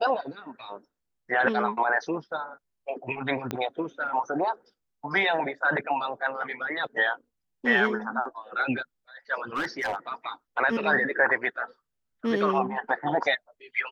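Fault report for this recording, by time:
0:03.51: click −15 dBFS
0:09.55–0:09.96: clipping −24.5 dBFS

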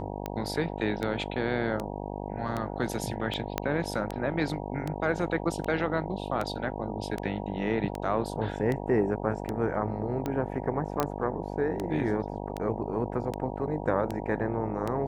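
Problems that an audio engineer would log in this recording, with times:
mains buzz 50 Hz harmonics 19 −36 dBFS
scratch tick 78 rpm −18 dBFS
0:03.58: click −12 dBFS
0:11.00: click −11 dBFS

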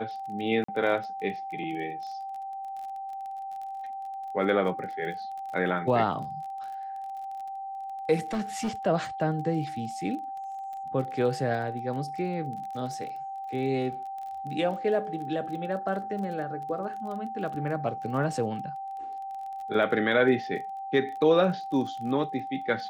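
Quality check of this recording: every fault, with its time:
surface crackle 24 per second −37 dBFS
whistle 780 Hz −34 dBFS
0:00.64–0:00.68: drop-out 44 ms
0:08.33–0:08.69: clipping −25 dBFS

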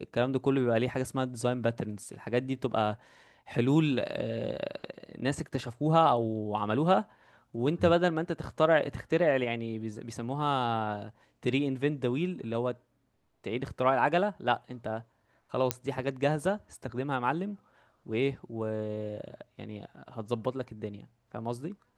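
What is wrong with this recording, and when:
0:15.71: click −9 dBFS

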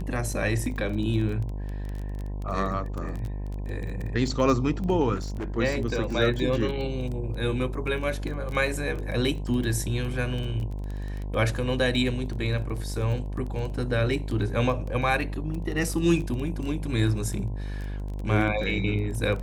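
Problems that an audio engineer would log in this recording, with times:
mains buzz 50 Hz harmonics 21 −32 dBFS
surface crackle 13 per second −31 dBFS
0:05.15–0:05.58: clipping −28 dBFS

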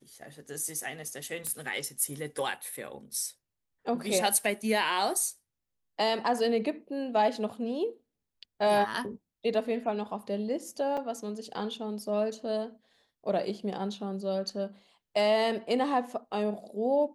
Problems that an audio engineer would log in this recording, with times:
0:01.47: click −18 dBFS
0:10.97: drop-out 4.8 ms

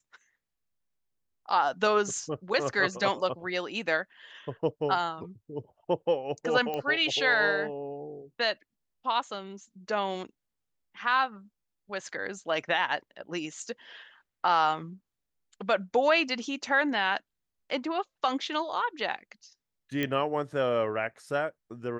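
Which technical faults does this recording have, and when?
0:06.74: click −20 dBFS
0:20.03: click −16 dBFS

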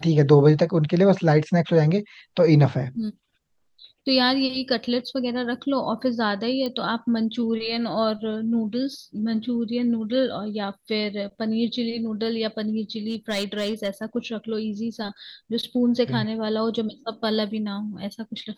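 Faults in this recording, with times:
0:06.66: click −17 dBFS
0:13.08–0:14.04: clipping −20.5 dBFS

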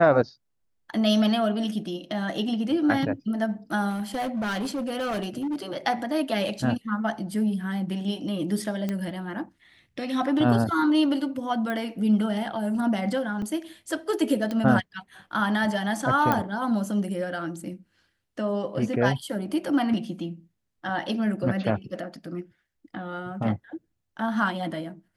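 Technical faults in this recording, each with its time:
0:03.89–0:05.56: clipping −25 dBFS
0:08.89: click −16 dBFS
0:11.70: click −19 dBFS
0:13.42: drop-out 3.2 ms
0:14.51: click −18 dBFS
0:16.32: click −10 dBFS

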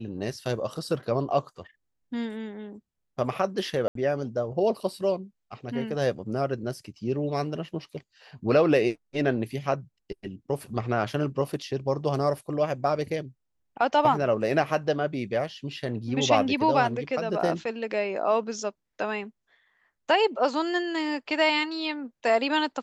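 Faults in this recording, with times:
0:03.88–0:03.95: drop-out 73 ms

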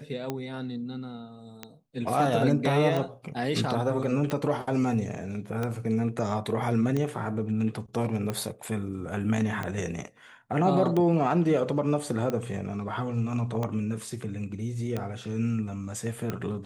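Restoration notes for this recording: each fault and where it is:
scratch tick 45 rpm −17 dBFS

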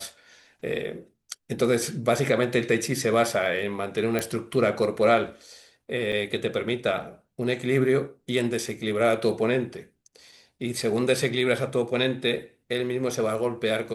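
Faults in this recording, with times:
0:04.19: click −12 dBFS
0:06.12–0:06.13: drop-out 6.4 ms

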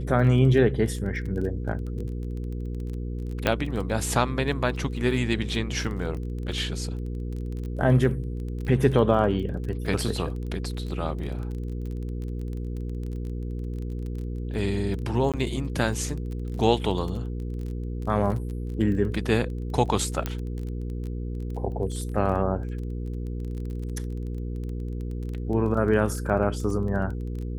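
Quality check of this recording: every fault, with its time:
surface crackle 21 per second −33 dBFS
mains hum 60 Hz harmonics 8 −31 dBFS
0:03.47: click −8 dBFS
0:15.32–0:15.34: drop-out 17 ms
0:20.26: click −13 dBFS

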